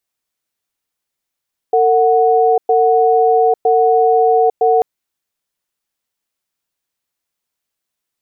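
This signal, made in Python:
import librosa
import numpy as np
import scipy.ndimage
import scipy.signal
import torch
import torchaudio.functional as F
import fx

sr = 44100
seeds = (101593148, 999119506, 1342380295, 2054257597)

y = fx.cadence(sr, length_s=3.09, low_hz=453.0, high_hz=738.0, on_s=0.85, off_s=0.11, level_db=-11.5)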